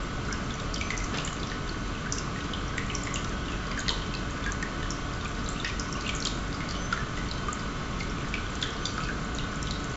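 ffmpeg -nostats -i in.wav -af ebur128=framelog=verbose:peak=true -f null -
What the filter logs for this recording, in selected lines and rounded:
Integrated loudness:
  I:         -32.2 LUFS
  Threshold: -42.2 LUFS
Loudness range:
  LRA:         0.4 LU
  Threshold: -52.1 LUFS
  LRA low:   -32.3 LUFS
  LRA high:  -31.9 LUFS
True peak:
  Peak:       -9.7 dBFS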